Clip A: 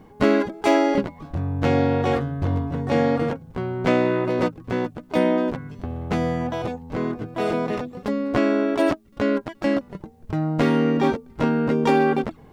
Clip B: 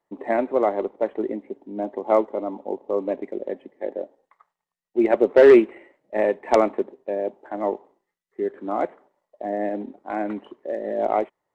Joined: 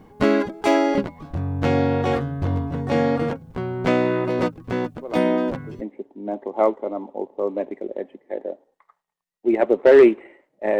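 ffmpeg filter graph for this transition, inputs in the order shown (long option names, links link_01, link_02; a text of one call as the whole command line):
ffmpeg -i cue0.wav -i cue1.wav -filter_complex "[1:a]asplit=2[link_01][link_02];[0:a]apad=whole_dur=10.79,atrim=end=10.79,atrim=end=5.812[link_03];[link_02]atrim=start=1.318:end=6.3[link_04];[link_01]atrim=start=0.52:end=1.32,asetpts=PTS-STARTPTS,volume=-13.5dB,afade=type=in:duration=0.004:curve=hsin,afade=type=out:start_time=0.796:duration=0.004:curve=hsin,adelay=220941S[link_05];[link_03][link_04]acrossfade=duration=0.004:curve1=hsin:curve2=hsin[link_06];[link_06][link_05]amix=inputs=2:normalize=0" out.wav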